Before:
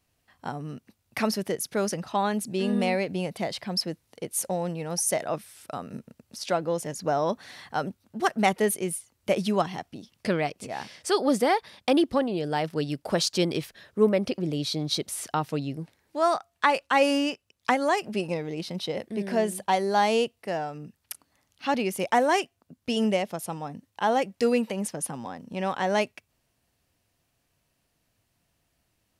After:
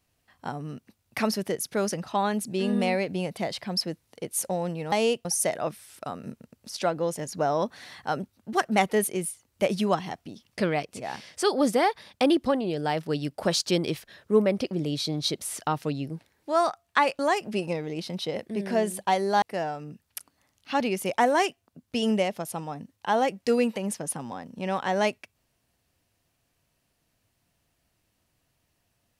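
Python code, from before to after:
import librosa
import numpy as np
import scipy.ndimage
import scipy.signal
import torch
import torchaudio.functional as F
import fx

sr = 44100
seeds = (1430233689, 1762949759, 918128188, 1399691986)

y = fx.edit(x, sr, fx.cut(start_s=16.86, length_s=0.94),
    fx.move(start_s=20.03, length_s=0.33, to_s=4.92), tone=tone)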